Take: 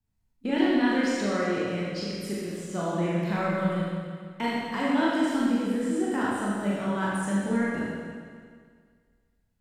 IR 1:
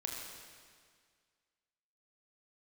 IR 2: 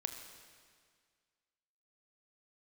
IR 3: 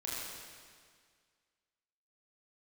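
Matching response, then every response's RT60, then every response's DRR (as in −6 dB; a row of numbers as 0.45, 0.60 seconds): 3; 1.9, 1.9, 1.9 seconds; −1.0, 5.5, −7.0 decibels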